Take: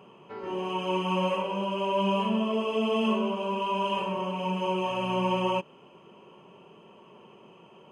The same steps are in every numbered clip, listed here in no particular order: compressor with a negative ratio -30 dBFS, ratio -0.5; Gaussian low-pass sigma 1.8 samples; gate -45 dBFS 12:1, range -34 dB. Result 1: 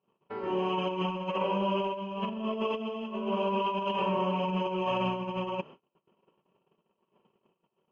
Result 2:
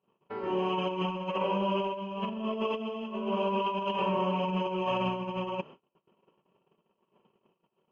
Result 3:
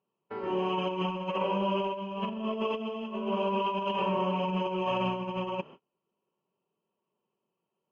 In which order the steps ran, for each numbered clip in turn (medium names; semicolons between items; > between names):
Gaussian low-pass > compressor with a negative ratio > gate; compressor with a negative ratio > Gaussian low-pass > gate; Gaussian low-pass > gate > compressor with a negative ratio